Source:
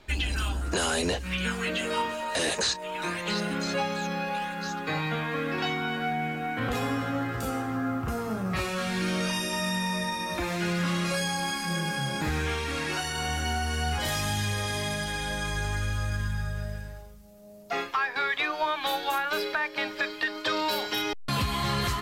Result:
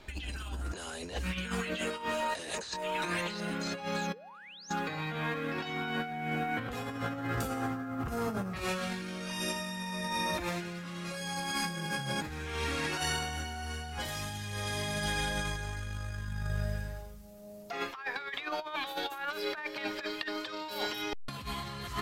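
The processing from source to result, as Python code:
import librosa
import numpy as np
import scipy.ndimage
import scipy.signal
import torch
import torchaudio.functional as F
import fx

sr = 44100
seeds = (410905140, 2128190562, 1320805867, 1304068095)

y = fx.spec_paint(x, sr, seeds[0], shape='rise', start_s=4.13, length_s=0.57, low_hz=400.0, high_hz=6800.0, level_db=-23.0)
y = fx.over_compress(y, sr, threshold_db=-32.0, ratio=-0.5)
y = y * 10.0 ** (-3.0 / 20.0)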